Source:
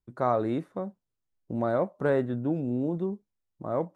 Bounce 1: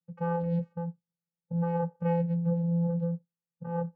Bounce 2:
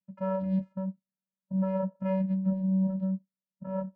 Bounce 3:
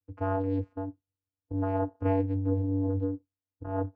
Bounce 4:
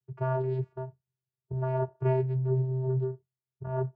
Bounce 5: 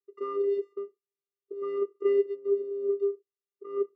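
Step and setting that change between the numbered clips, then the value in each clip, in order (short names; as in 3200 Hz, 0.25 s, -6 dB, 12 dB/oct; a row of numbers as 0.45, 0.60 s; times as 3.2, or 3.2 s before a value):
vocoder, frequency: 170, 190, 96, 130, 400 Hz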